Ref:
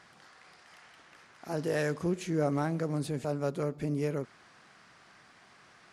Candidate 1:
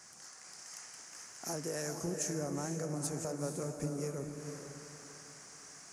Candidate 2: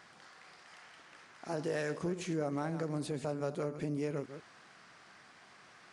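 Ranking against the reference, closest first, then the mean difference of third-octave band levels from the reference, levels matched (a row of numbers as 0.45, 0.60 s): 2, 1; 3.5, 9.0 dB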